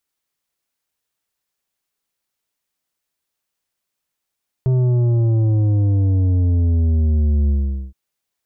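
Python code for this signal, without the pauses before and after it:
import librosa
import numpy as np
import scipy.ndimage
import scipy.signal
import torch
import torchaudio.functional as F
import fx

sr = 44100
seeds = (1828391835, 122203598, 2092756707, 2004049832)

y = fx.sub_drop(sr, level_db=-14, start_hz=130.0, length_s=3.27, drive_db=8.5, fade_s=0.44, end_hz=65.0)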